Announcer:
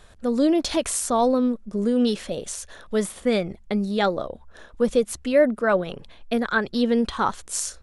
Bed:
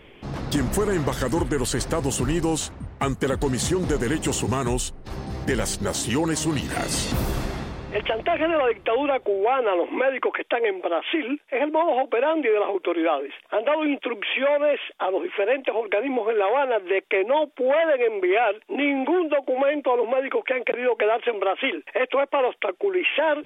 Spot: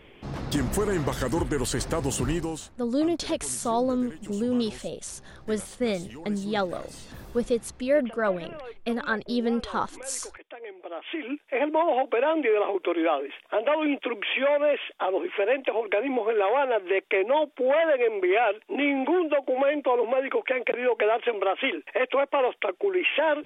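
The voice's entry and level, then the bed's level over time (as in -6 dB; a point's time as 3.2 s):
2.55 s, -5.0 dB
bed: 2.32 s -3 dB
2.83 s -19.5 dB
10.57 s -19.5 dB
11.5 s -2 dB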